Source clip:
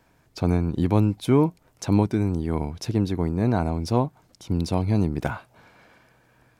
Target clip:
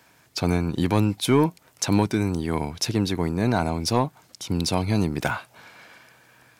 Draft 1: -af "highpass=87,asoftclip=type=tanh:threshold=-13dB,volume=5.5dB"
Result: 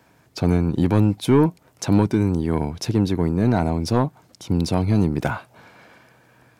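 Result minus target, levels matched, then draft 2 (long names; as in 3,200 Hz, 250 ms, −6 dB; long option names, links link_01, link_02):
1,000 Hz band −3.5 dB
-af "highpass=87,tiltshelf=frequency=1100:gain=-5.5,asoftclip=type=tanh:threshold=-13dB,volume=5.5dB"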